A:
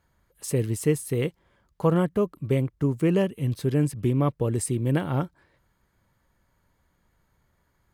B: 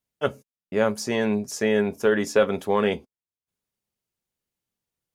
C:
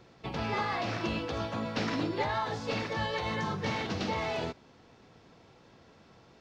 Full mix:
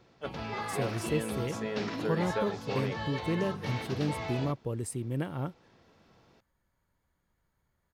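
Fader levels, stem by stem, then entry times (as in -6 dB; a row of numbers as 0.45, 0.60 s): -9.0, -14.5, -4.5 dB; 0.25, 0.00, 0.00 s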